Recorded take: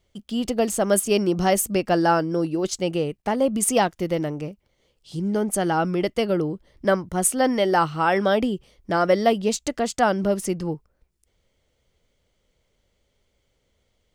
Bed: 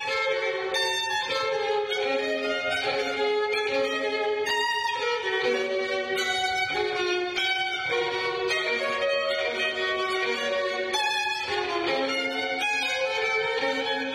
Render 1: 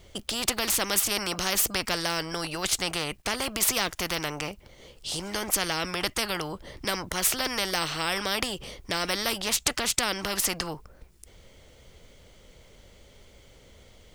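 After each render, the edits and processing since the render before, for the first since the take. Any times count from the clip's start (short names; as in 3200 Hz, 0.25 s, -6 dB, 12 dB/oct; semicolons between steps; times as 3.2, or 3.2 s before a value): spectral compressor 4:1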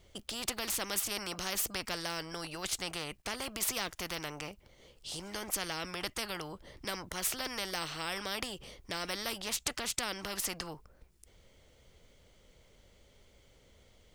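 gain -9 dB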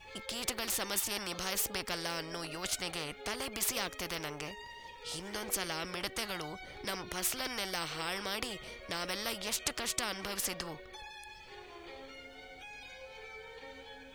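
add bed -23 dB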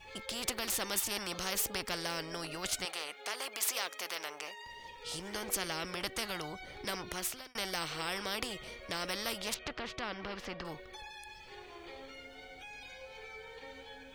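2.85–4.66 HPF 540 Hz; 7.11–7.55 fade out; 9.54–10.65 air absorption 250 m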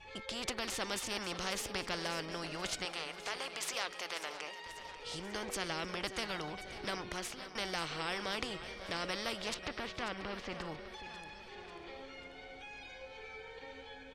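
air absorption 67 m; feedback echo 0.54 s, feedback 57%, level -13 dB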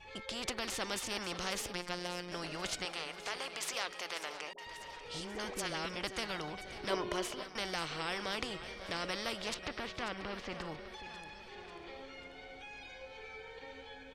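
1.73–2.32 robotiser 177 Hz; 4.53–5.96 dispersion highs, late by 53 ms, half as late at 660 Hz; 6.9–7.43 small resonant body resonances 400/590/1000/3000 Hz, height 11 dB, ringing for 30 ms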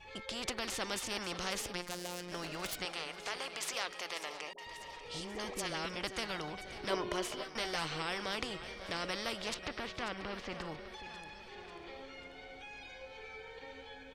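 1.86–2.78 self-modulated delay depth 0.17 ms; 4.09–5.69 notch 1500 Hz, Q 7.9; 7.3–8.02 doubler 13 ms -5 dB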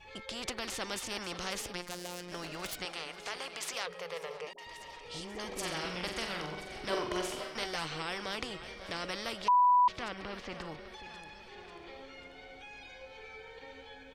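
3.86–4.47 EQ curve 110 Hz 0 dB, 180 Hz +11 dB, 250 Hz -28 dB, 470 Hz +13 dB, 680 Hz -3 dB, 1100 Hz 0 dB, 7000 Hz -9 dB, 16000 Hz -3 dB; 5.47–7.64 flutter echo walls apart 7.7 m, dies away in 0.54 s; 9.48–9.88 bleep 988 Hz -20.5 dBFS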